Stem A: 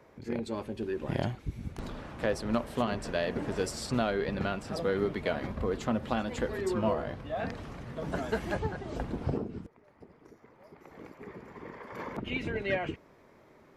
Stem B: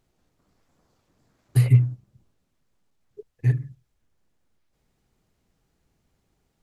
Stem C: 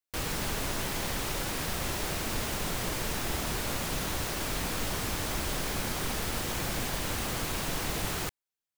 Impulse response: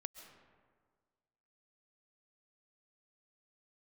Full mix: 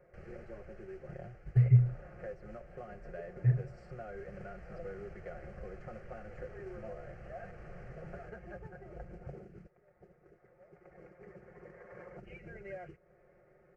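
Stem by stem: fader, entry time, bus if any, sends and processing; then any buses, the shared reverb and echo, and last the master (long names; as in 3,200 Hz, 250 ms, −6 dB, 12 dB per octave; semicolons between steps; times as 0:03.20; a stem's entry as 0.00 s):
−1.5 dB, 0.00 s, no send, comb filter 5.6 ms; downward compressor 2.5 to 1, threshold −41 dBFS, peak gain reduction 12.5 dB; noise that follows the level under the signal 10 dB
−3.5 dB, 0.00 s, no send, no processing
−8.5 dB, 0.00 s, no send, brickwall limiter −28.5 dBFS, peak gain reduction 9.5 dB; automatic ducking −8 dB, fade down 1.25 s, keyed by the second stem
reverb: not used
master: head-to-tape spacing loss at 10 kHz 39 dB; phaser with its sweep stopped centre 980 Hz, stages 6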